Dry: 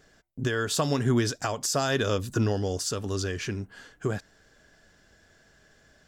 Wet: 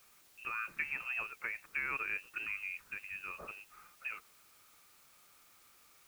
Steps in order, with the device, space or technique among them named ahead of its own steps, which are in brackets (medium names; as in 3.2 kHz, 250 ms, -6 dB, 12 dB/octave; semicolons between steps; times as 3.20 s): scrambled radio voice (band-pass 380–2900 Hz; frequency inversion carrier 2.9 kHz; white noise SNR 21 dB); trim -9 dB